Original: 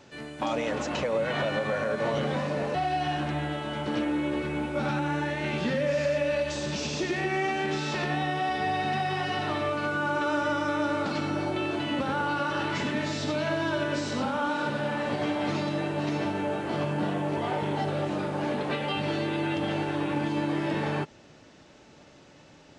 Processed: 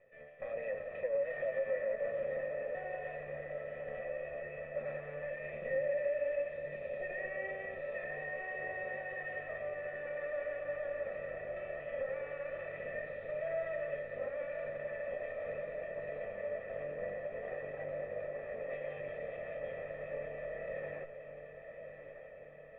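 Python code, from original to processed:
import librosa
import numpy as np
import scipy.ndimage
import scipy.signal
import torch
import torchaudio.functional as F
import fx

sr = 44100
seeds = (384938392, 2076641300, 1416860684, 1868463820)

p1 = fx.lower_of_two(x, sr, delay_ms=1.6)
p2 = fx.formant_cascade(p1, sr, vowel='e')
p3 = fx.comb_fb(p2, sr, f0_hz=650.0, decay_s=0.21, harmonics='all', damping=0.0, mix_pct=80)
p4 = p3 + fx.echo_diffused(p3, sr, ms=1163, feedback_pct=66, wet_db=-9.5, dry=0)
y = p4 * librosa.db_to_amplitude(11.0)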